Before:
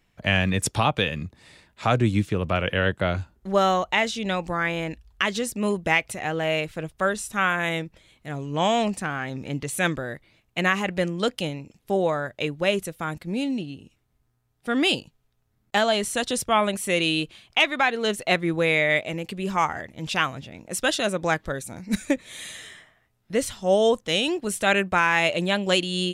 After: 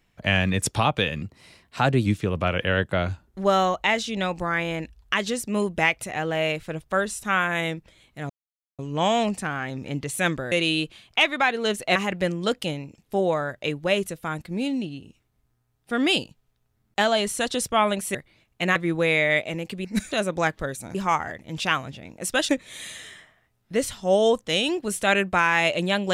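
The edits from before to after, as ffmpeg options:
ffmpeg -i in.wav -filter_complex "[0:a]asplit=12[link_01][link_02][link_03][link_04][link_05][link_06][link_07][link_08][link_09][link_10][link_11][link_12];[link_01]atrim=end=1.224[link_13];[link_02]atrim=start=1.22:end=2.14,asetpts=PTS-STARTPTS,asetrate=48510,aresample=44100[link_14];[link_03]atrim=start=2.136:end=8.38,asetpts=PTS-STARTPTS,afade=type=out:start_time=6.24:duration=0.004:curve=hsin,apad=pad_dur=0.49[link_15];[link_04]atrim=start=8.38:end=10.112,asetpts=PTS-STARTPTS,afade=type=in:duration=0.004:curve=hsin[link_16];[link_05]atrim=start=16.908:end=18.352[link_17];[link_06]atrim=start=10.718:end=16.912[link_18];[link_07]atrim=start=10.108:end=10.722[link_19];[link_08]atrim=start=18.348:end=19.442[link_20];[link_09]atrim=start=21.808:end=22.082[link_21];[link_10]atrim=start=20.978:end=21.812[link_22];[link_11]atrim=start=19.438:end=20.982[link_23];[link_12]atrim=start=22.078[link_24];[link_13][link_14]acrossfade=duration=0.004:curve1=hsin:curve2=hsin[link_25];[link_15][link_16]concat=n=2:v=0:a=1[link_26];[link_25][link_26]acrossfade=duration=0.004:curve1=hsin:curve2=hsin[link_27];[link_27][link_17]acrossfade=duration=0.004:curve1=hsin:curve2=hsin[link_28];[link_28][link_18]acrossfade=duration=0.004:curve1=hsin:curve2=hsin[link_29];[link_29][link_19]acrossfade=duration=0.004:curve1=hsin:curve2=hsin[link_30];[link_30][link_20]acrossfade=duration=0.004:curve1=hsin:curve2=hsin[link_31];[link_31][link_21]acrossfade=duration=0.004:curve1=hsin:curve2=hsin[link_32];[link_32][link_22]acrossfade=duration=0.004:curve1=hsin:curve2=hsin[link_33];[link_33][link_23]acrossfade=duration=0.004:curve1=hsin:curve2=hsin[link_34];[link_34][link_24]acrossfade=duration=0.004:curve1=hsin:curve2=hsin" out.wav

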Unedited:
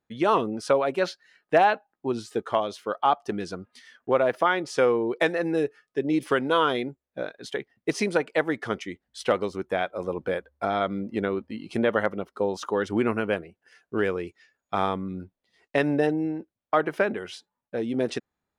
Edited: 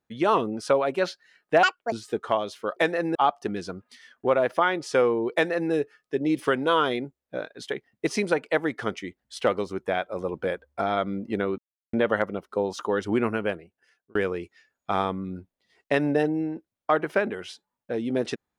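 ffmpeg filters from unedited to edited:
ffmpeg -i in.wav -filter_complex "[0:a]asplit=8[link_01][link_02][link_03][link_04][link_05][link_06][link_07][link_08];[link_01]atrim=end=1.634[link_09];[link_02]atrim=start=1.63:end=2.15,asetpts=PTS-STARTPTS,asetrate=78498,aresample=44100,atrim=end_sample=12883,asetpts=PTS-STARTPTS[link_10];[link_03]atrim=start=2.146:end=2.992[link_11];[link_04]atrim=start=5.168:end=5.562[link_12];[link_05]atrim=start=2.988:end=11.42,asetpts=PTS-STARTPTS,afade=type=out:start_time=8.428:duration=0.004:curve=hsin[link_13];[link_06]atrim=start=11.42:end=11.77,asetpts=PTS-STARTPTS,volume=0[link_14];[link_07]atrim=start=11.77:end=13.99,asetpts=PTS-STARTPTS,afade=type=in:duration=0.004:curve=hsin,afade=type=out:start_time=1.19:duration=1.03:curve=qsin[link_15];[link_08]atrim=start=13.99,asetpts=PTS-STARTPTS,afade=type=in:duration=0.004:curve=hsin[link_16];[link_09][link_10]acrossfade=duration=0.004:curve1=hsin:curve2=hsin[link_17];[link_17][link_11]acrossfade=duration=0.004:curve1=hsin:curve2=hsin[link_18];[link_18][link_12]acrossfade=duration=0.004:curve1=hsin:curve2=hsin[link_19];[link_13][link_14][link_15][link_16]concat=n=4:v=0:a=1[link_20];[link_19][link_20]acrossfade=duration=0.004:curve1=hsin:curve2=hsin" out.wav

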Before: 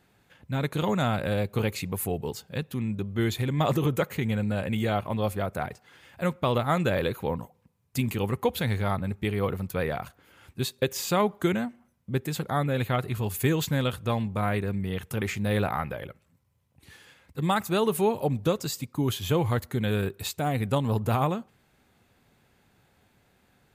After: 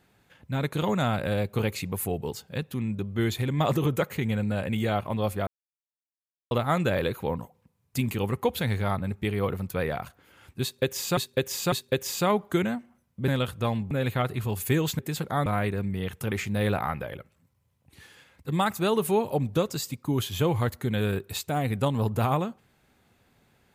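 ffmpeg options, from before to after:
ffmpeg -i in.wav -filter_complex "[0:a]asplit=9[link_01][link_02][link_03][link_04][link_05][link_06][link_07][link_08][link_09];[link_01]atrim=end=5.47,asetpts=PTS-STARTPTS,afade=type=out:start_time=5.466:duration=0.004:curve=hsin[link_10];[link_02]atrim=start=5.47:end=6.51,asetpts=PTS-STARTPTS,volume=0[link_11];[link_03]atrim=start=6.51:end=11.172,asetpts=PTS-STARTPTS,afade=type=in:duration=0.004:curve=hsin[link_12];[link_04]atrim=start=10.618:end=11.172[link_13];[link_05]atrim=start=10.618:end=12.182[link_14];[link_06]atrim=start=13.728:end=14.362[link_15];[link_07]atrim=start=12.648:end=13.732[link_16];[link_08]atrim=start=12.178:end=12.652[link_17];[link_09]atrim=start=14.358[link_18];[link_10][link_11][link_12]concat=n=3:v=0:a=1[link_19];[link_19][link_13]acrossfade=duration=0.004:curve1=hsin:curve2=hsin[link_20];[link_20][link_14]acrossfade=duration=0.004:curve1=hsin:curve2=hsin[link_21];[link_21][link_15]acrossfade=duration=0.004:curve1=hsin:curve2=hsin[link_22];[link_22][link_16]acrossfade=duration=0.004:curve1=hsin:curve2=hsin[link_23];[link_23][link_17]acrossfade=duration=0.004:curve1=hsin:curve2=hsin[link_24];[link_24][link_18]acrossfade=duration=0.004:curve1=hsin:curve2=hsin" out.wav

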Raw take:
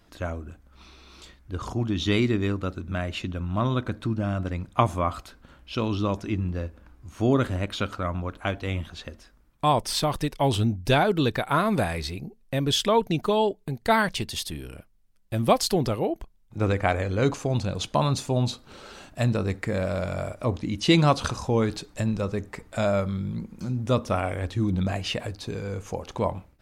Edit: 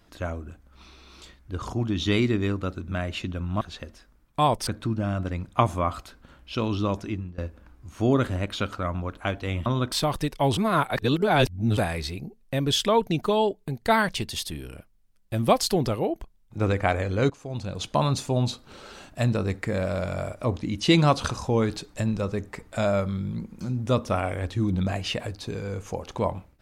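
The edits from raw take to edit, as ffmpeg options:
ffmpeg -i in.wav -filter_complex "[0:a]asplit=9[link_01][link_02][link_03][link_04][link_05][link_06][link_07][link_08][link_09];[link_01]atrim=end=3.612[link_10];[link_02]atrim=start=8.858:end=9.922[link_11];[link_03]atrim=start=3.868:end=6.58,asetpts=PTS-STARTPTS,afade=type=out:start_time=2.342:duration=0.37:silence=0.1[link_12];[link_04]atrim=start=6.58:end=8.862,asetpts=PTS-STARTPTS,afade=type=in:duration=0.004:curve=hsin:silence=0.1[link_13];[link_05]atrim=start=3.608:end=3.872[link_14];[link_06]atrim=start=9.918:end=10.572[link_15];[link_07]atrim=start=10.568:end=11.772,asetpts=PTS-STARTPTS,areverse[link_16];[link_08]atrim=start=11.768:end=17.3,asetpts=PTS-STARTPTS,afade=type=out:start_time=5.528:duration=0.004:curve=hsin:silence=0.105925[link_17];[link_09]atrim=start=17.3,asetpts=PTS-STARTPTS,afade=type=in:duration=0.68:silence=0.105925[link_18];[link_10][link_11]acrossfade=duration=0.004:curve1=hsin:curve2=hsin[link_19];[link_12][link_13]concat=n=2:v=0:a=1[link_20];[link_19][link_20]acrossfade=duration=0.004:curve1=hsin:curve2=hsin[link_21];[link_21][link_14]acrossfade=duration=0.004:curve1=hsin:curve2=hsin[link_22];[link_22][link_15]acrossfade=duration=0.004:curve1=hsin:curve2=hsin[link_23];[link_23][link_16]acrossfade=duration=0.004:curve1=hsin:curve2=hsin[link_24];[link_17][link_18]concat=n=2:v=0:a=1[link_25];[link_24][link_25]acrossfade=duration=0.004:curve1=hsin:curve2=hsin" out.wav

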